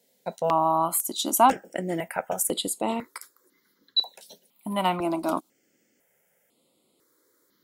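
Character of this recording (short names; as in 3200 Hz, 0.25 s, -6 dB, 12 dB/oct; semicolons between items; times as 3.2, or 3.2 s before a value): notches that jump at a steady rate 2 Hz 320–5900 Hz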